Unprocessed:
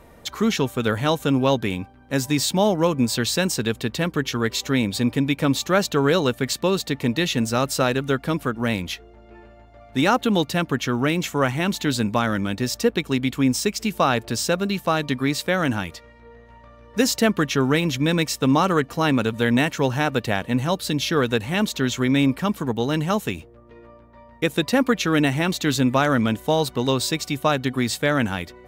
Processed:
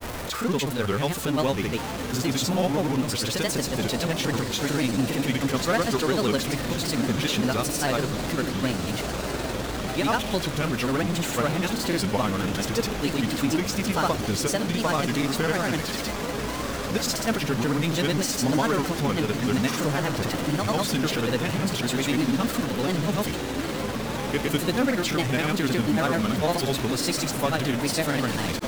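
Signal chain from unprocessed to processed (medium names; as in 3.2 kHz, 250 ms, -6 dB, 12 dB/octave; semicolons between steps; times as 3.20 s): jump at every zero crossing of -19.5 dBFS; echo that smears into a reverb 1393 ms, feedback 71%, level -8.5 dB; granulator, pitch spread up and down by 3 st; trim -6.5 dB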